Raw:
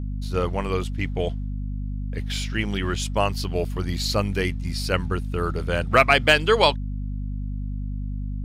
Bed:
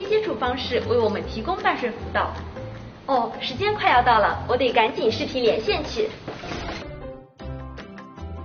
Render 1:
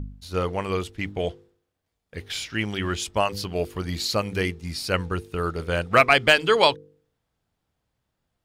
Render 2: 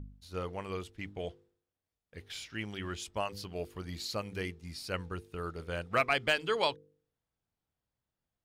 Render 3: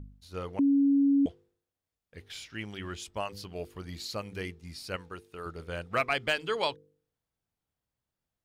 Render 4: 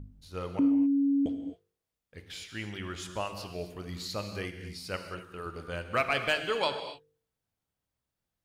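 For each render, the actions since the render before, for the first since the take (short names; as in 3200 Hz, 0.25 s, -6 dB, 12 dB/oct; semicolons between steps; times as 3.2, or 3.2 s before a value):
de-hum 50 Hz, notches 10
gain -12 dB
0.59–1.26 bleep 279 Hz -20 dBFS; 4.96–5.46 low shelf 200 Hz -11.5 dB
non-linear reverb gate 0.29 s flat, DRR 6.5 dB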